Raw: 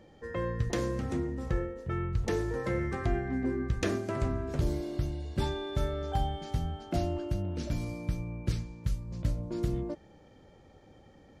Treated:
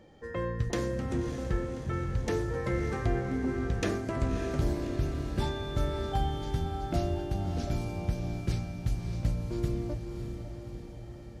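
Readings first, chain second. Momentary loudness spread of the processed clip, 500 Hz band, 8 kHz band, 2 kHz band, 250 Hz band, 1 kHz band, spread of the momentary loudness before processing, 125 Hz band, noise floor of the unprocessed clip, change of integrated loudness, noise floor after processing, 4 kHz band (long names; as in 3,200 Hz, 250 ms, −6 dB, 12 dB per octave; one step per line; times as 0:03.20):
8 LU, +0.5 dB, +1.0 dB, +1.0 dB, +1.0 dB, +1.0 dB, 4 LU, +1.5 dB, −57 dBFS, +0.5 dB, −44 dBFS, +1.0 dB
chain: on a send: feedback delay with all-pass diffusion 595 ms, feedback 59%, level −7 dB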